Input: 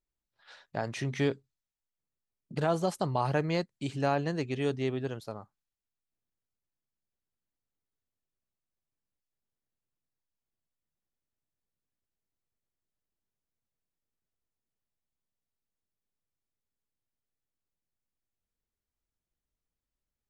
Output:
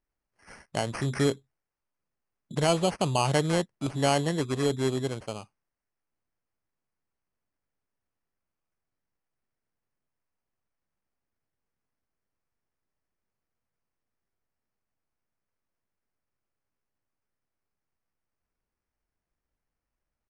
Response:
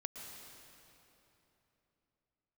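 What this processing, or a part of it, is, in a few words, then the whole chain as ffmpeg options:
crushed at another speed: -af "asetrate=88200,aresample=44100,acrusher=samples=6:mix=1:aa=0.000001,asetrate=22050,aresample=44100,volume=4dB"

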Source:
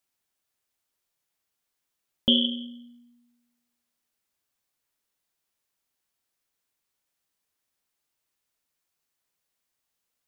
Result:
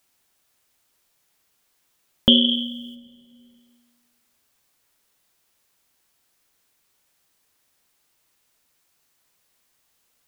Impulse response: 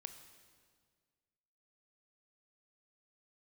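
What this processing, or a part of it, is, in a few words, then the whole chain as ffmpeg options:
ducked reverb: -filter_complex "[0:a]asplit=3[link_01][link_02][link_03];[1:a]atrim=start_sample=2205[link_04];[link_02][link_04]afir=irnorm=-1:irlink=0[link_05];[link_03]apad=whole_len=453276[link_06];[link_05][link_06]sidechaincompress=threshold=-36dB:ratio=8:attack=32:release=1110,volume=9.5dB[link_07];[link_01][link_07]amix=inputs=2:normalize=0,asplit=3[link_08][link_09][link_10];[link_08]afade=type=out:start_time=2.47:duration=0.02[link_11];[link_09]highshelf=frequency=2800:gain=12,afade=type=in:start_time=2.47:duration=0.02,afade=type=out:start_time=2.94:duration=0.02[link_12];[link_10]afade=type=in:start_time=2.94:duration=0.02[link_13];[link_11][link_12][link_13]amix=inputs=3:normalize=0,volume=4.5dB"

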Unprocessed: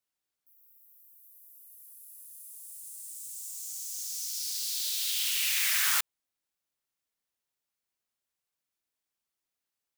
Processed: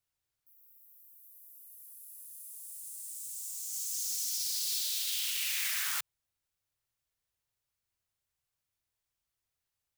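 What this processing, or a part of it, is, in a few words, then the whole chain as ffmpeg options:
car stereo with a boomy subwoofer: -filter_complex "[0:a]asettb=1/sr,asplit=3[link_01][link_02][link_03];[link_01]atrim=end=3.724[link_04];[link_02]atrim=start=3.72:end=4.8,asetpts=PTS-STARTPTS,afade=type=in:duration=0.004:curve=qsin,afade=type=out:start_time=1.076:duration=0.004:curve=qsin,aecho=1:1:3.4:0.77,atrim=end_sample=47628[link_05];[link_03]atrim=start=4.796[link_06];[link_04][link_05]acrossfade=duration=0.004:curve1=hsin:curve2=qsin[link_07];[link_07][link_06]acrossfade=duration=0.004:curve1=qsin:curve2=hsin,lowshelf=frequency=150:width_type=q:width=1.5:gain=11,alimiter=limit=-23.5dB:level=0:latency=1:release=46"

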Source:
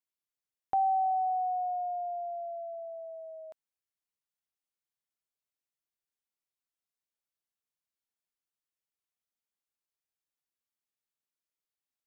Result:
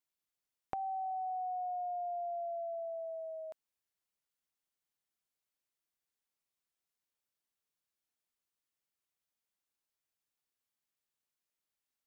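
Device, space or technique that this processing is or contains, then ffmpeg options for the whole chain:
serial compression, leveller first: -af "acompressor=threshold=-31dB:ratio=6,acompressor=threshold=-38dB:ratio=6,volume=1.5dB"

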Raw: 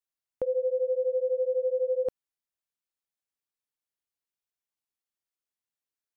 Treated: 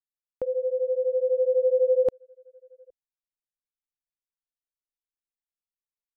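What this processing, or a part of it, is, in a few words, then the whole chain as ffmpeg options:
voice memo with heavy noise removal: -filter_complex "[0:a]asplit=2[link_01][link_02];[link_02]adelay=816.3,volume=-29dB,highshelf=frequency=4000:gain=-18.4[link_03];[link_01][link_03]amix=inputs=2:normalize=0,anlmdn=0.00631,dynaudnorm=framelen=570:gausssize=5:maxgain=7dB"

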